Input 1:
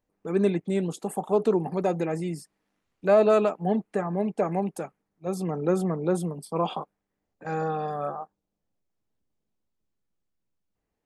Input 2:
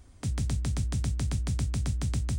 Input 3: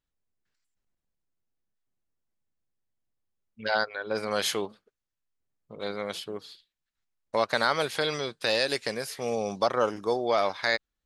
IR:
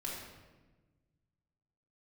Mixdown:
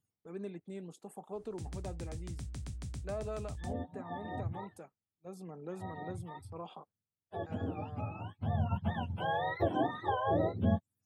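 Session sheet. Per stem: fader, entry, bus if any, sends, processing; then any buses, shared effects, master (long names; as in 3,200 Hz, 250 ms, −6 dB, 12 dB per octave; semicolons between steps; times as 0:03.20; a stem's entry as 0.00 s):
−17.0 dB, 0.00 s, no send, noise gate −44 dBFS, range −8 dB
−11.0 dB, 1.35 s, no send, no processing
+3.0 dB, 0.00 s, no send, frequency axis turned over on the octave scale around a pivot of 620 Hz; high-shelf EQ 3,800 Hz +7.5 dB; notch filter 4,700 Hz, Q 19; automatic ducking −13 dB, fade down 0.25 s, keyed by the first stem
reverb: not used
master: downward compressor 1.5 to 1, threshold −41 dBFS, peak gain reduction 9.5 dB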